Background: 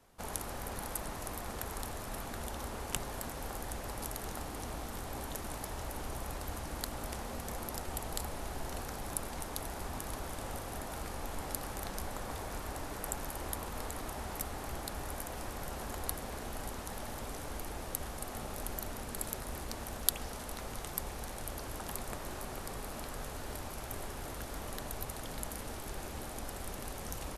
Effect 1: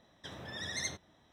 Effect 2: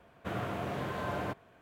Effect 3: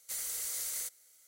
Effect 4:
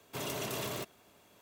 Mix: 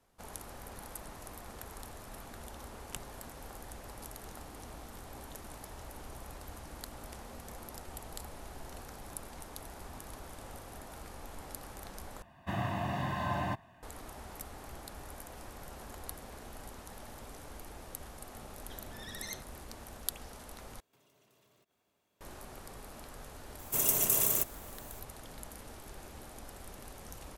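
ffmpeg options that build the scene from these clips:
ffmpeg -i bed.wav -i cue0.wav -i cue1.wav -i cue2.wav -i cue3.wav -filter_complex "[4:a]asplit=2[link_01][link_02];[0:a]volume=-6.5dB[link_03];[2:a]aecho=1:1:1.1:0.88[link_04];[link_01]acompressor=threshold=-51dB:ratio=6:attack=3.2:release=140:knee=1:detection=peak[link_05];[link_02]aexciter=amount=6.7:drive=5.8:freq=6300[link_06];[link_03]asplit=3[link_07][link_08][link_09];[link_07]atrim=end=12.224[link_10];[link_04]atrim=end=1.61,asetpts=PTS-STARTPTS,volume=-1dB[link_11];[link_08]atrim=start=13.826:end=20.804[link_12];[link_05]atrim=end=1.41,asetpts=PTS-STARTPTS,volume=-16dB[link_13];[link_09]atrim=start=22.206[link_14];[1:a]atrim=end=1.32,asetpts=PTS-STARTPTS,volume=-7dB,afade=type=in:duration=0.004:curve=hsin,afade=type=out:start_time=1.316:duration=0.004:curve=hsin,adelay=18460[link_15];[link_06]atrim=end=1.41,asetpts=PTS-STARTPTS,volume=-1dB,afade=type=in:duration=0.004:curve=hsin,afade=type=out:start_time=1.406:duration=0.004:curve=hsin,adelay=23590[link_16];[link_10][link_11]acrossfade=duration=0.004:curve1=hsin:curve2=hsin[link_17];[link_17][link_12]acrossfade=duration=0.004:curve1=hsin:curve2=hsin[link_18];[link_18][link_13]acrossfade=duration=0.004:curve1=hsin:curve2=hsin[link_19];[link_19][link_14]acrossfade=duration=0.004:curve1=hsin:curve2=hsin[link_20];[link_20][link_15][link_16]amix=inputs=3:normalize=0" out.wav

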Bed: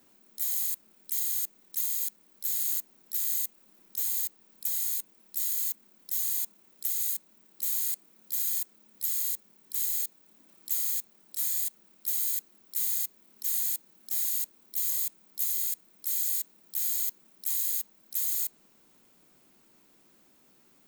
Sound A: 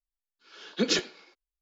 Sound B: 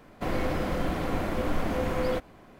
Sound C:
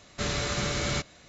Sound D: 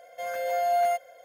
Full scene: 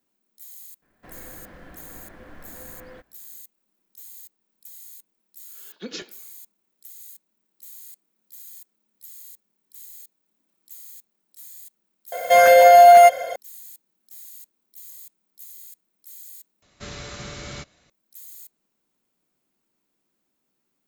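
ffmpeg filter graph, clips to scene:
ffmpeg -i bed.wav -i cue0.wav -i cue1.wav -i cue2.wav -i cue3.wav -filter_complex "[0:a]volume=-13.5dB[link_01];[2:a]equalizer=frequency=1700:width_type=o:width=0.35:gain=11[link_02];[1:a]asplit=2[link_03][link_04];[link_04]adelay=163.3,volume=-28dB,highshelf=frequency=4000:gain=-3.67[link_05];[link_03][link_05]amix=inputs=2:normalize=0[link_06];[4:a]alimiter=level_in=23.5dB:limit=-1dB:release=50:level=0:latency=1[link_07];[link_01]asplit=2[link_08][link_09];[link_08]atrim=end=16.624[link_10];[3:a]atrim=end=1.28,asetpts=PTS-STARTPTS,volume=-7.5dB[link_11];[link_09]atrim=start=17.896[link_12];[link_02]atrim=end=2.59,asetpts=PTS-STARTPTS,volume=-17.5dB,afade=type=in:duration=0.004:curve=hsin,afade=type=out:start_time=2.586:duration=0.004:curve=hsin,adelay=820[link_13];[link_06]atrim=end=1.61,asetpts=PTS-STARTPTS,volume=-9.5dB,afade=type=in:duration=0.004:curve=hsin,afade=type=out:start_time=1.606:duration=0.004:curve=hsin,adelay=5030[link_14];[link_07]atrim=end=1.24,asetpts=PTS-STARTPTS,volume=-2.5dB,afade=type=in:duration=0.004:curve=hsin,afade=type=out:start_time=1.236:duration=0.004:curve=hsin,adelay=12120[link_15];[link_10][link_11]acrossfade=duration=0.004:curve1=hsin:curve2=hsin[link_16];[link_16][link_12]acrossfade=duration=0.004:curve1=hsin:curve2=hsin[link_17];[link_17][link_13][link_14][link_15]amix=inputs=4:normalize=0" out.wav

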